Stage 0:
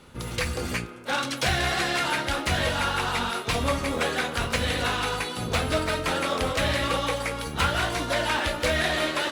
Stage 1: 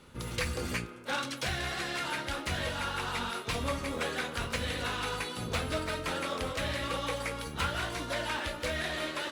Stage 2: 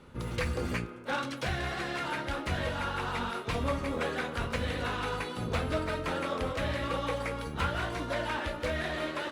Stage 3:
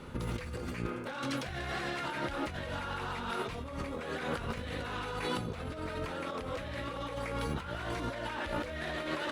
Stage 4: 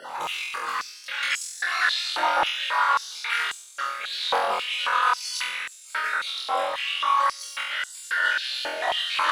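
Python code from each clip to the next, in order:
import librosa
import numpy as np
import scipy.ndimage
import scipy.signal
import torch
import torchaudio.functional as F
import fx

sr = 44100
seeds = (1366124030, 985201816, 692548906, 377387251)

y1 = fx.peak_eq(x, sr, hz=740.0, db=-3.5, octaves=0.29)
y1 = fx.rider(y1, sr, range_db=3, speed_s=0.5)
y1 = y1 * librosa.db_to_amplitude(-7.5)
y2 = fx.high_shelf(y1, sr, hz=2700.0, db=-11.0)
y2 = y2 * librosa.db_to_amplitude(3.0)
y3 = fx.over_compress(y2, sr, threshold_db=-39.0, ratio=-1.0)
y3 = y3 * librosa.db_to_amplitude(1.5)
y4 = fx.spec_dropout(y3, sr, seeds[0], share_pct=34)
y4 = fx.room_flutter(y4, sr, wall_m=4.0, rt60_s=0.88)
y4 = fx.filter_held_highpass(y4, sr, hz=3.7, low_hz=790.0, high_hz=7400.0)
y4 = y4 * librosa.db_to_amplitude(9.0)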